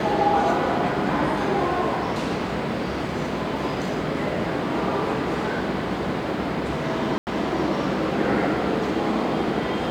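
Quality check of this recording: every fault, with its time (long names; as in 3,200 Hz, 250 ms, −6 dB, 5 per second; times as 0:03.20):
0:07.18–0:07.27: drop-out 89 ms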